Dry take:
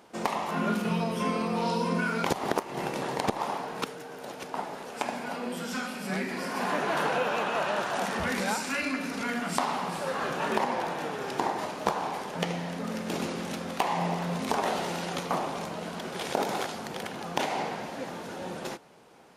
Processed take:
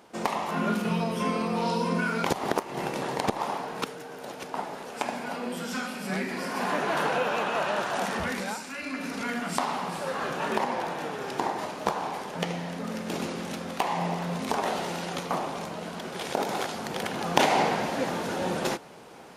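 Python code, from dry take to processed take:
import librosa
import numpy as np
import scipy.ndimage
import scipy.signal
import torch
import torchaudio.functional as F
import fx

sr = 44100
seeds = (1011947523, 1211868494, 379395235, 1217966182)

y = fx.gain(x, sr, db=fx.line((8.15, 1.0), (8.74, -7.5), (9.06, 0.0), (16.45, 0.0), (17.44, 8.0)))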